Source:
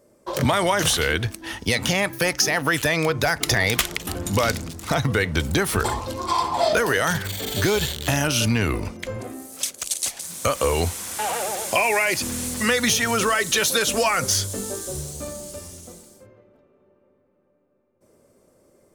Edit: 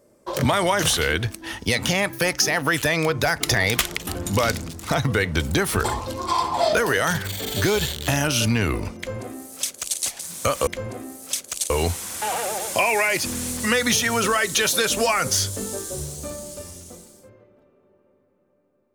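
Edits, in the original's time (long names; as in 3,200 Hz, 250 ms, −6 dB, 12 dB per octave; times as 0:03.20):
0:08.97–0:10.00: duplicate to 0:10.67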